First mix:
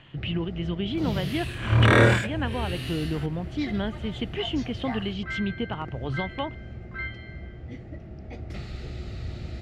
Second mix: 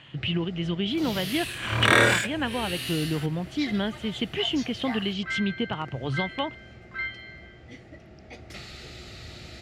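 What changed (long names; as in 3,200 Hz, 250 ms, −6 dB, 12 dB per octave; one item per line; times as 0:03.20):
speech: add low-shelf EQ 370 Hz +11 dB
master: add spectral tilt +3 dB per octave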